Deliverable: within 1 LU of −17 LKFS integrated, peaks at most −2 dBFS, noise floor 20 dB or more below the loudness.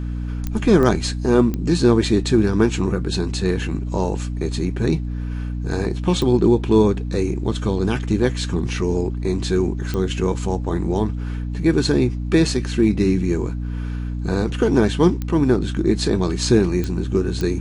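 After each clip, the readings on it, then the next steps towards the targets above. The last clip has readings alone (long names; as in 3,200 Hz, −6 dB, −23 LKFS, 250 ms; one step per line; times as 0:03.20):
number of clicks 8; mains hum 60 Hz; hum harmonics up to 300 Hz; level of the hum −23 dBFS; integrated loudness −20.0 LKFS; sample peak −3.0 dBFS; target loudness −17.0 LKFS
→ click removal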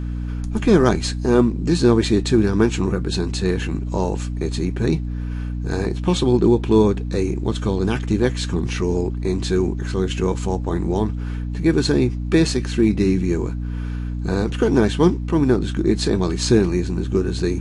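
number of clicks 0; mains hum 60 Hz; hum harmonics up to 300 Hz; level of the hum −23 dBFS
→ hum removal 60 Hz, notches 5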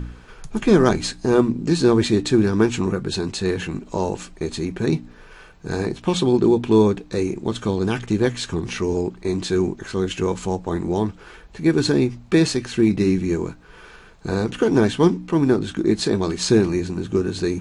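mains hum none found; integrated loudness −21.0 LKFS; sample peak −3.5 dBFS; target loudness −17.0 LKFS
→ level +4 dB
brickwall limiter −2 dBFS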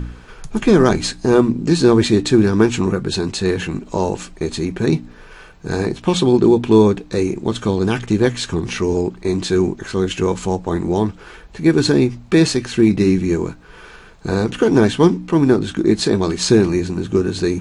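integrated loudness −17.0 LKFS; sample peak −2.0 dBFS; background noise floor −41 dBFS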